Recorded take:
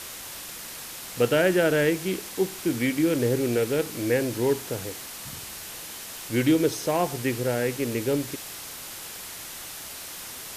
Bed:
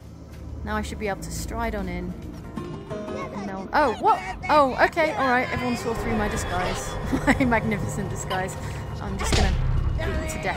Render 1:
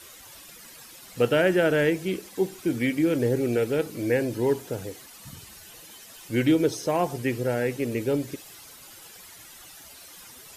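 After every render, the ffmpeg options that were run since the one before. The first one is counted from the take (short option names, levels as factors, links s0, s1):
-af "afftdn=nr=12:nf=-39"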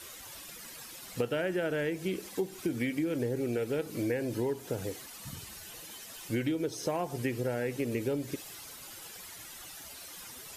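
-af "acompressor=threshold=0.0398:ratio=10"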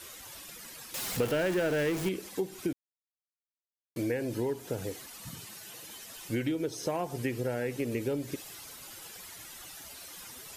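-filter_complex "[0:a]asettb=1/sr,asplit=3[s0][s1][s2];[s0]atrim=end=0.944[s3];[s1]atrim=start=0.94:end=2.09,asetpts=PTS-STARTPTS,afade=t=in:d=0.004:c=qsin,afade=t=out:st=1.146:d=0.004:c=qsin,aeval=exprs='val(0)+0.5*0.0251*sgn(val(0))':c=same[s4];[s2]atrim=start=2.086[s5];[s3][s4]acrossfade=d=0.004:c1=hsin:c2=qsin[s6];[s6][s5]acrossfade=d=0.004:c1=qsin:c2=hsin,asettb=1/sr,asplit=3[s7][s8][s9];[s7]atrim=end=5.294[s10];[s8]atrim=start=5.29:end=5.84,asetpts=PTS-STARTPTS,afade=t=in:d=0.004:c=qsin,afade=t=out:st=0.546:d=0.004:c=qsin,highpass=f=110:w=0.5412,highpass=f=110:w=1.3066[s11];[s9]atrim=start=5.836[s12];[s10][s11]acrossfade=d=0.004:c1=hsin:c2=qsin[s13];[s13][s12]acrossfade=d=0.004:c1=qsin:c2=hsin,asplit=3[s14][s15][s16];[s14]atrim=end=2.73,asetpts=PTS-STARTPTS,afade=t=out:st=2.726:d=0.004:c=hsin[s17];[s15]atrim=start=2.73:end=3.96,asetpts=PTS-STARTPTS,volume=0[s18];[s16]atrim=start=3.96,asetpts=PTS-STARTPTS,afade=t=in:d=0.004:c=hsin[s19];[s17][s18][s19]concat=n=3:v=0:a=1"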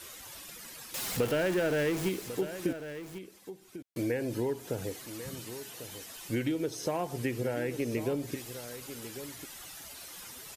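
-af "aecho=1:1:1096:0.251"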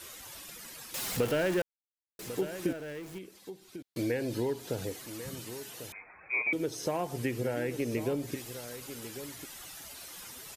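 -filter_complex "[0:a]asettb=1/sr,asplit=3[s0][s1][s2];[s0]atrim=end=3.354[s3];[s1]atrim=start=3.35:end=4.85,asetpts=PTS-STARTPTS,afade=t=in:d=0.004:c=qsin,afade=t=out:st=1.496:d=0.004:c=qsin,equalizer=f=4100:t=o:w=0.74:g=6[s4];[s2]atrim=start=4.846[s5];[s3][s4]acrossfade=d=0.004:c1=hsin:c2=qsin[s6];[s6][s5]acrossfade=d=0.004:c1=qsin:c2=hsin,asettb=1/sr,asplit=3[s7][s8][s9];[s7]atrim=end=5.924[s10];[s8]atrim=start=5.92:end=6.53,asetpts=PTS-STARTPTS,afade=t=in:d=0.004:c=qsin,afade=t=out:st=0.606:d=0.004:c=qsin,lowpass=f=2200:t=q:w=0.5098,lowpass=f=2200:t=q:w=0.6013,lowpass=f=2200:t=q:w=0.9,lowpass=f=2200:t=q:w=2.563,afreqshift=-2600[s11];[s9]atrim=start=6.526[s12];[s10][s11]acrossfade=d=0.004:c1=hsin:c2=qsin[s13];[s13][s12]acrossfade=d=0.004:c1=qsin:c2=hsin,asplit=3[s14][s15][s16];[s14]atrim=end=1.62,asetpts=PTS-STARTPTS,afade=t=out:st=1.616:d=0.004:c=hsin[s17];[s15]atrim=start=1.62:end=2.19,asetpts=PTS-STARTPTS,volume=0[s18];[s16]atrim=start=2.19,asetpts=PTS-STARTPTS,afade=t=in:d=0.004:c=hsin[s19];[s17][s18][s19]concat=n=3:v=0:a=1"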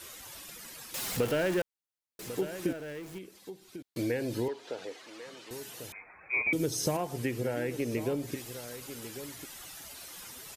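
-filter_complex "[0:a]asettb=1/sr,asplit=3[s0][s1][s2];[s0]atrim=end=4.484[s3];[s1]atrim=start=4.48:end=5.51,asetpts=PTS-STARTPTS,afade=t=in:d=0.004:c=qsin,afade=t=out:st=1.026:d=0.004:c=qsin,highpass=450,lowpass=4300[s4];[s2]atrim=start=5.506[s5];[s3][s4]acrossfade=d=0.004:c1=hsin:c2=qsin[s6];[s6][s5]acrossfade=d=0.004:c1=qsin:c2=hsin,asettb=1/sr,asplit=3[s7][s8][s9];[s7]atrim=end=6.334[s10];[s8]atrim=start=6.33:end=6.97,asetpts=PTS-STARTPTS,afade=t=in:d=0.004:c=qsin,afade=t=out:st=0.636:d=0.004:c=qsin,bass=f=250:g=9,treble=f=4000:g=9[s11];[s9]atrim=start=6.966[s12];[s10][s11]acrossfade=d=0.004:c1=hsin:c2=qsin[s13];[s13][s12]acrossfade=d=0.004:c1=qsin:c2=hsin"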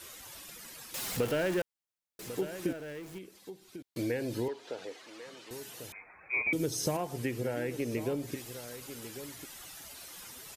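-af "volume=0.841"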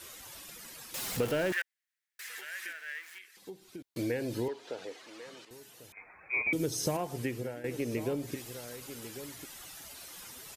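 -filter_complex "[0:a]asettb=1/sr,asplit=3[s0][s1][s2];[s0]atrim=end=1.524[s3];[s1]atrim=start=1.52:end=3.37,asetpts=PTS-STARTPTS,afade=t=in:d=0.004:c=qsin,afade=t=out:st=1.846:d=0.004:c=qsin,highpass=f=1800:t=q:w=4.4[s4];[s2]atrim=start=3.366[s5];[s3][s4]acrossfade=d=0.004:c1=hsin:c2=qsin[s6];[s6][s5]acrossfade=d=0.004:c1=qsin:c2=hsin,asplit=4[s7][s8][s9][s10];[s7]atrim=end=5.452[s11];[s8]atrim=start=5.448:end=5.972,asetpts=PTS-STARTPTS,volume=0.398[s12];[s9]atrim=start=5.968:end=7.64,asetpts=PTS-STARTPTS,afade=t=out:st=1.172:d=0.5:c=qsin:silence=0.211349[s13];[s10]atrim=start=7.64,asetpts=PTS-STARTPTS,afade=t=in:d=0.004:c=hsin:silence=0.211349[s14];[s11][s12]acrossfade=d=0.004:c1=hsin:c2=hsin[s15];[s13][s14]concat=n=2:v=0:a=1[s16];[s15][s16]acrossfade=d=0.004:c1=hsin:c2=hsin"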